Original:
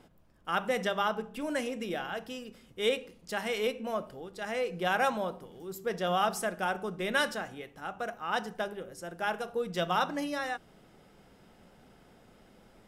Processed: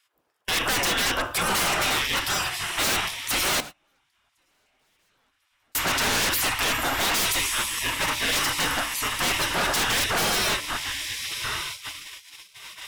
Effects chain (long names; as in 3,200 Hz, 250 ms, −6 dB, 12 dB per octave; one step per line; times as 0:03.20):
soft clipping −28.5 dBFS, distortion −10 dB
high-shelf EQ 2,500 Hz −3 dB
feedback delay with all-pass diffusion 1,174 ms, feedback 59%, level −13 dB
gate on every frequency bin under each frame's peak −20 dB weak
high-shelf EQ 7,600 Hz +3.5 dB
sine wavefolder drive 18 dB, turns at −28.5 dBFS
0:03.60–0:05.75: downward compressor 8 to 1, threshold −48 dBFS, peak gain reduction 16.5 dB
hum removal 73.4 Hz, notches 14
noise gate −42 dBFS, range −28 dB
level +8.5 dB